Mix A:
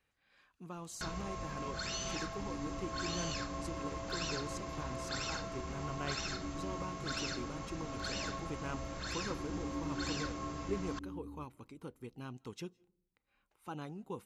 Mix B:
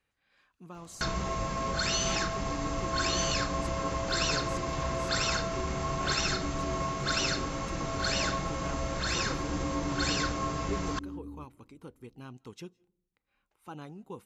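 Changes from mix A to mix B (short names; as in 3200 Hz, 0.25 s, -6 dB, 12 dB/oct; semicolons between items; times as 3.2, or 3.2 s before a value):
first sound +10.0 dB; second sound +5.0 dB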